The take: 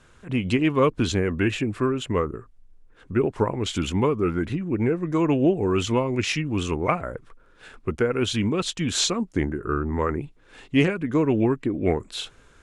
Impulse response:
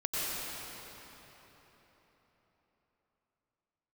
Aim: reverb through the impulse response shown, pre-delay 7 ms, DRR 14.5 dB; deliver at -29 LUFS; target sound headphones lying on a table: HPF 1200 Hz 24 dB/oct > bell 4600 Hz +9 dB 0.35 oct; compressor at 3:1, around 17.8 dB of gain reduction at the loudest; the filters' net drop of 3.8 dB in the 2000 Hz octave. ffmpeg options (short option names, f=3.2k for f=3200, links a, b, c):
-filter_complex "[0:a]equalizer=f=2k:t=o:g=-5,acompressor=threshold=-41dB:ratio=3,asplit=2[a][b];[1:a]atrim=start_sample=2205,adelay=7[c];[b][c]afir=irnorm=-1:irlink=0,volume=-22.5dB[d];[a][d]amix=inputs=2:normalize=0,highpass=f=1.2k:w=0.5412,highpass=f=1.2k:w=1.3066,equalizer=f=4.6k:t=o:w=0.35:g=9,volume=15.5dB"